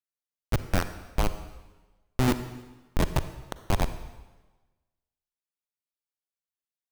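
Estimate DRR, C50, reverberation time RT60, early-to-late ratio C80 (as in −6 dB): 11.0 dB, 11.5 dB, 1.2 s, 13.0 dB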